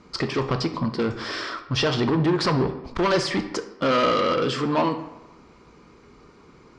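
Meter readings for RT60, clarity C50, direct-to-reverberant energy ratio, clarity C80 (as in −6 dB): 1.1 s, 11.5 dB, 8.5 dB, 13.5 dB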